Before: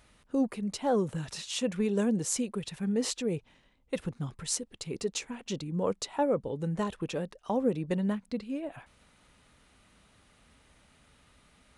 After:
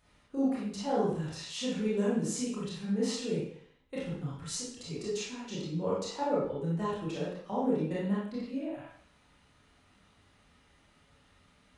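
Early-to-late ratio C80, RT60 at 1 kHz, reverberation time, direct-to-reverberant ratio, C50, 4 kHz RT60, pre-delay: 4.5 dB, 0.65 s, 0.60 s, -8.5 dB, -0.5 dB, 0.55 s, 22 ms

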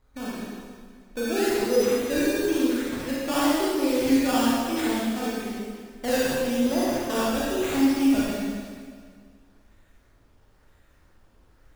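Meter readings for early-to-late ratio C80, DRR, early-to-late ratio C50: -1.5 dB, -8.0 dB, -4.5 dB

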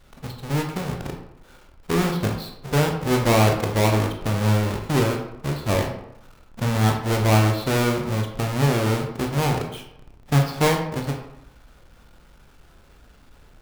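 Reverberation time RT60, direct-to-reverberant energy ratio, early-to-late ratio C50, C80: 0.80 s, 2.0 dB, 6.0 dB, 9.0 dB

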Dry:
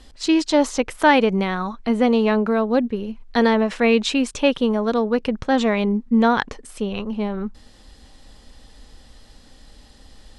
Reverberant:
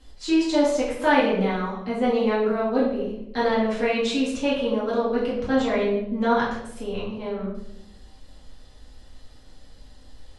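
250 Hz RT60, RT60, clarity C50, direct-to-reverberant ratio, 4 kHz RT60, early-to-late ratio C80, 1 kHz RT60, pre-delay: 1.1 s, 0.85 s, 3.0 dB, -8.0 dB, 0.60 s, 6.0 dB, 0.70 s, 4 ms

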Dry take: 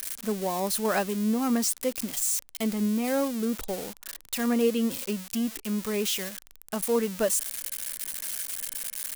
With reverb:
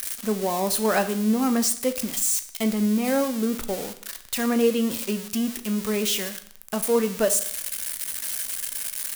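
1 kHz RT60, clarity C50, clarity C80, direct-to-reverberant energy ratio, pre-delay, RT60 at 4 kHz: 0.60 s, 13.5 dB, 16.5 dB, 9.0 dB, 15 ms, 0.55 s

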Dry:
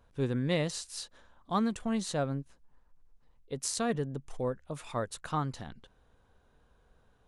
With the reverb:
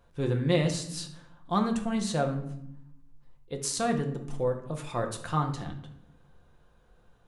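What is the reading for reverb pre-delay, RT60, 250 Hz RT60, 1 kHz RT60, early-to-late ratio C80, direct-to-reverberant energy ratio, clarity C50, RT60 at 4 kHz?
6 ms, 0.75 s, 1.2 s, 0.70 s, 13.0 dB, 3.5 dB, 9.0 dB, 0.50 s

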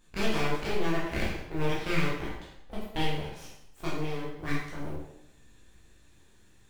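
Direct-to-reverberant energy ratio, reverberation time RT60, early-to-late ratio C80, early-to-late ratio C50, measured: -7.0 dB, 0.80 s, 4.5 dB, 1.5 dB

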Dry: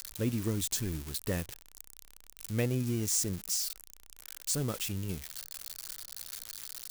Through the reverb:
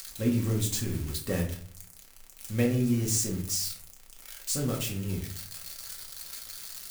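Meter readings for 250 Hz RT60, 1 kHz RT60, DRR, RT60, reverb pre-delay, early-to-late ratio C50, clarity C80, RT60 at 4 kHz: 0.65 s, 0.50 s, -2.0 dB, 0.55 s, 4 ms, 8.5 dB, 12.5 dB, 0.30 s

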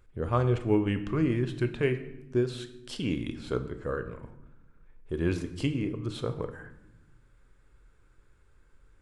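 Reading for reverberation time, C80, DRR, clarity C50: 0.95 s, 14.5 dB, 8.0 dB, 12.0 dB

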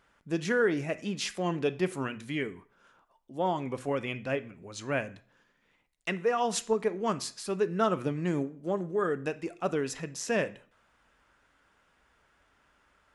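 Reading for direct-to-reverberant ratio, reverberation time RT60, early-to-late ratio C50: 11.5 dB, 0.50 s, 17.0 dB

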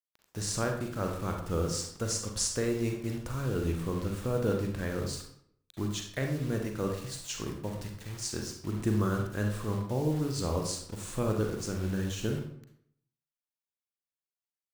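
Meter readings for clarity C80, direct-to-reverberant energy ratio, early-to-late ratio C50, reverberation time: 9.0 dB, 2.5 dB, 5.5 dB, 0.65 s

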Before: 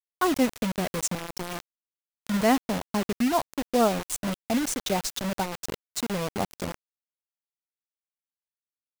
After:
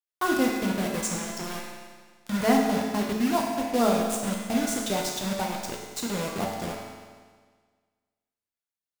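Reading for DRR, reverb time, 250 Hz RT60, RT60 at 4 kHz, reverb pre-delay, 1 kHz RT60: -1.5 dB, 1.6 s, 1.6 s, 1.5 s, 9 ms, 1.6 s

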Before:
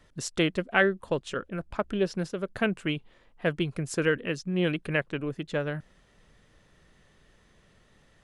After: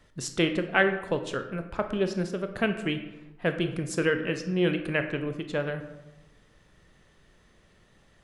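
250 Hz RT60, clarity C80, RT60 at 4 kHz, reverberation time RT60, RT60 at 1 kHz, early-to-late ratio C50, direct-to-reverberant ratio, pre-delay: 1.1 s, 12.0 dB, 0.55 s, 1.0 s, 0.95 s, 9.5 dB, 7.0 dB, 20 ms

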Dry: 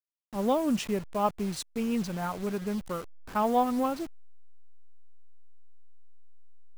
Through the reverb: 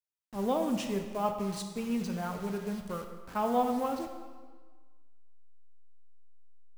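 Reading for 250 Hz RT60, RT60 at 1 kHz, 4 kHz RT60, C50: 1.5 s, 1.5 s, 1.2 s, 7.0 dB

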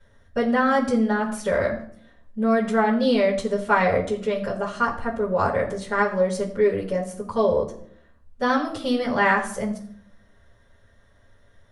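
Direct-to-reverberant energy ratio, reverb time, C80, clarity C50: -10.0 dB, 0.60 s, 13.0 dB, 10.0 dB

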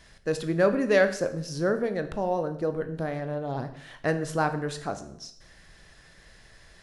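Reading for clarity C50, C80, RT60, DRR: 12.0 dB, 15.0 dB, 0.70 s, 8.5 dB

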